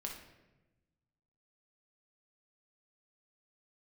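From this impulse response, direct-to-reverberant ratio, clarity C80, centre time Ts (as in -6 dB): 0.0 dB, 8.0 dB, 35 ms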